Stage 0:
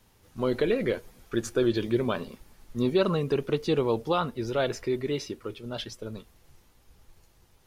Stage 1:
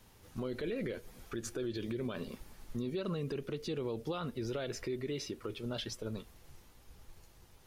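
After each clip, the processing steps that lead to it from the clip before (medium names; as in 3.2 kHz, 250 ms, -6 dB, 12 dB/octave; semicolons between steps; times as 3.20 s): dynamic bell 900 Hz, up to -7 dB, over -42 dBFS, Q 1.4; compression 2:1, threshold -37 dBFS, peak gain reduction 9.5 dB; peak limiter -30 dBFS, peak gain reduction 8.5 dB; trim +1 dB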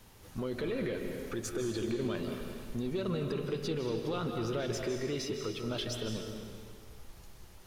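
in parallel at -4.5 dB: saturation -40 dBFS, distortion -9 dB; on the sum: algorithmic reverb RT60 1.8 s, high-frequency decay 0.95×, pre-delay 115 ms, DRR 3.5 dB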